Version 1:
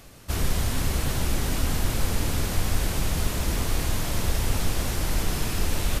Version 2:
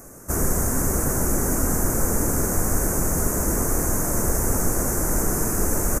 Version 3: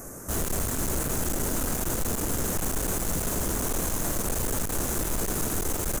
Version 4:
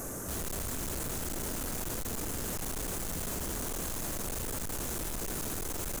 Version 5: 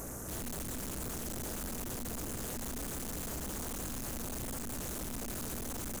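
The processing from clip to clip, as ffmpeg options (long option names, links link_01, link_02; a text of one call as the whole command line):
ffmpeg -i in.wav -af "firequalizer=gain_entry='entry(100,0);entry(200,6);entry(380,9);entry(820,4);entry(1500,5);entry(3400,-28);entry(6300,10)':delay=0.05:min_phase=1" out.wav
ffmpeg -i in.wav -af "aeval=exprs='(tanh(31.6*val(0)+0.35)-tanh(0.35))/31.6':channel_layout=same,volume=4dB" out.wav
ffmpeg -i in.wav -af "asoftclip=type=hard:threshold=-38dB,volume=3dB" out.wav
ffmpeg -i in.wav -af "tremolo=f=240:d=0.974,aeval=exprs='val(0)+0.00355*(sin(2*PI*60*n/s)+sin(2*PI*2*60*n/s)/2+sin(2*PI*3*60*n/s)/3+sin(2*PI*4*60*n/s)/4+sin(2*PI*5*60*n/s)/5)':channel_layout=same" out.wav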